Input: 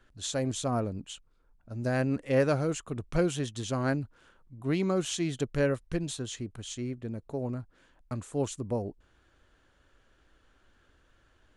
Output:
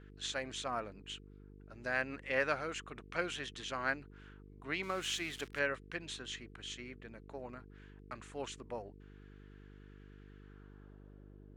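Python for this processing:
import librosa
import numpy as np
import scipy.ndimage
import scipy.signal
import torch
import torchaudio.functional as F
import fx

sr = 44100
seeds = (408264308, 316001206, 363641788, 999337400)

y = fx.crossing_spikes(x, sr, level_db=-31.5, at=(4.83, 5.59))
y = fx.filter_sweep_bandpass(y, sr, from_hz=2000.0, to_hz=320.0, start_s=10.37, end_s=11.44, q=1.3)
y = fx.dmg_buzz(y, sr, base_hz=50.0, harmonics=9, level_db=-59.0, tilt_db=-4, odd_only=False)
y = F.gain(torch.from_numpy(y), 3.5).numpy()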